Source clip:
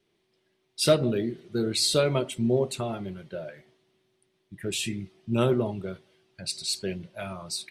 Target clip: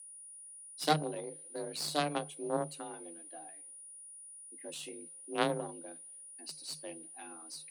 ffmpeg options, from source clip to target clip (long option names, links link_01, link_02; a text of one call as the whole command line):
ffmpeg -i in.wav -af "aeval=exprs='0.376*(cos(1*acos(clip(val(0)/0.376,-1,1)))-cos(1*PI/2))+0.168*(cos(2*acos(clip(val(0)/0.376,-1,1)))-cos(2*PI/2))+0.0841*(cos(3*acos(clip(val(0)/0.376,-1,1)))-cos(3*PI/2))+0.0075*(cos(4*acos(clip(val(0)/0.376,-1,1)))-cos(4*PI/2))+0.00473*(cos(8*acos(clip(val(0)/0.376,-1,1)))-cos(8*PI/2))':channel_layout=same,aeval=exprs='val(0)+0.00708*sin(2*PI*9500*n/s)':channel_layout=same,afreqshift=150,volume=-5.5dB" out.wav